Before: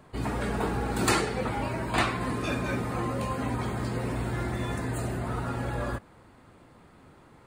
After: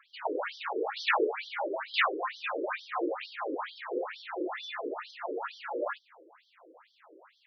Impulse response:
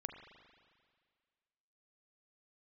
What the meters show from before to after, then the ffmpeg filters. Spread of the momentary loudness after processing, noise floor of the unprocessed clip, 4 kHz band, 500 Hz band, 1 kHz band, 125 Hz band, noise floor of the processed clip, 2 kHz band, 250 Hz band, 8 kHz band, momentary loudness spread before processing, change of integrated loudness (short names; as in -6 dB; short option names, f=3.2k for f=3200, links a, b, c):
10 LU, -55 dBFS, -0.5 dB, -0.5 dB, -2.0 dB, under -40 dB, -69 dBFS, 0.0 dB, -9.0 dB, under -20 dB, 5 LU, -3.5 dB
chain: -af "afftfilt=real='re*between(b*sr/1024,390*pow(4400/390,0.5+0.5*sin(2*PI*2.2*pts/sr))/1.41,390*pow(4400/390,0.5+0.5*sin(2*PI*2.2*pts/sr))*1.41)':imag='im*between(b*sr/1024,390*pow(4400/390,0.5+0.5*sin(2*PI*2.2*pts/sr))/1.41,390*pow(4400/390,0.5+0.5*sin(2*PI*2.2*pts/sr))*1.41)':win_size=1024:overlap=0.75,volume=5.5dB"